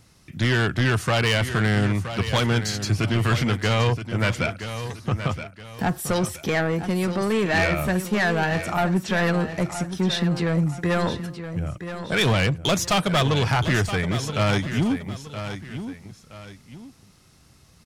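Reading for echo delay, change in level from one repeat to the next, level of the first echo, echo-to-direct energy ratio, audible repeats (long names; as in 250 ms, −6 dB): 972 ms, −9.0 dB, −10.5 dB, −10.0 dB, 2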